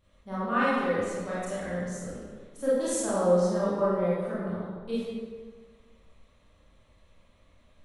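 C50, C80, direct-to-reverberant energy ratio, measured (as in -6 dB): -3.5 dB, -0.5 dB, -10.5 dB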